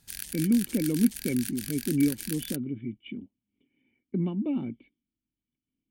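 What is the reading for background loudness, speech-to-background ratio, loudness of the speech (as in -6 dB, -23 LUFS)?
-36.5 LUFS, 7.5 dB, -29.0 LUFS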